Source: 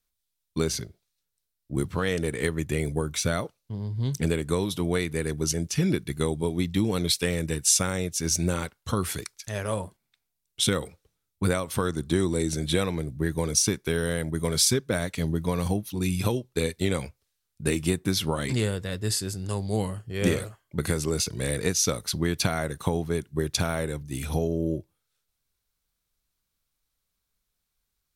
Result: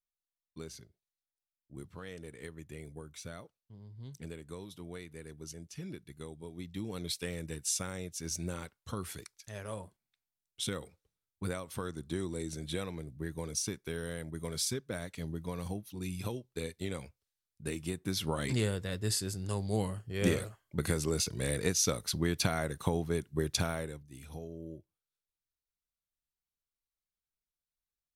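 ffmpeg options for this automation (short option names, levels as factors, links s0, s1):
-af "volume=0.562,afade=t=in:st=6.46:d=0.7:silence=0.446684,afade=t=in:st=17.93:d=0.53:silence=0.446684,afade=t=out:st=23.58:d=0.49:silence=0.237137"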